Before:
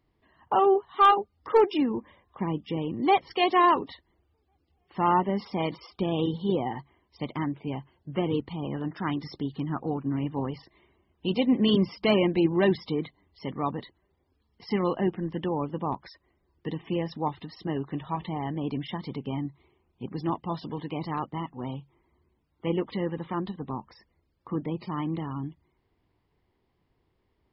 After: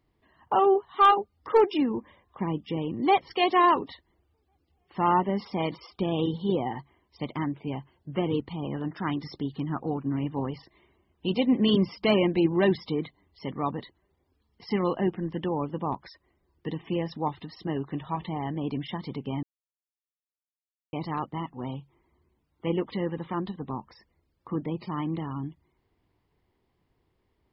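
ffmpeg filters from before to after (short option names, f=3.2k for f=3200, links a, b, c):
-filter_complex "[0:a]asplit=3[a][b][c];[a]atrim=end=19.43,asetpts=PTS-STARTPTS,afade=t=out:st=19.426:d=0.004:c=hsin[d];[b]atrim=start=19.43:end=20.93,asetpts=PTS-STARTPTS,volume=0[e];[c]atrim=start=20.93,asetpts=PTS-STARTPTS,afade=t=in:d=0.004:c=hsin[f];[d][e][f]concat=n=3:v=0:a=1"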